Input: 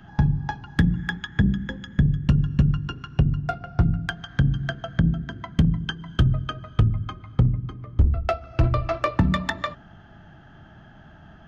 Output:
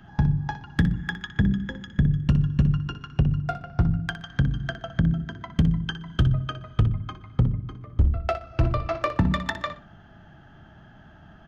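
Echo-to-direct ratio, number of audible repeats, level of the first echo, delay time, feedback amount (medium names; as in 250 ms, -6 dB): -12.0 dB, 2, -12.0 dB, 61 ms, 23%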